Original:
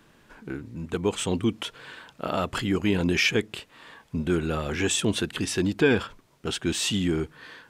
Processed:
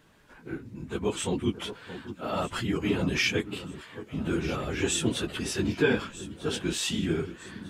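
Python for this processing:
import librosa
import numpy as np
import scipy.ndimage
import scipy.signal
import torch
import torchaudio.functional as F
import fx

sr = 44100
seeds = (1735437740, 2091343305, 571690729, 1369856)

p1 = fx.phase_scramble(x, sr, seeds[0], window_ms=50)
p2 = p1 + fx.echo_alternate(p1, sr, ms=624, hz=1400.0, feedback_pct=67, wet_db=-12.0, dry=0)
y = F.gain(torch.from_numpy(p2), -3.0).numpy()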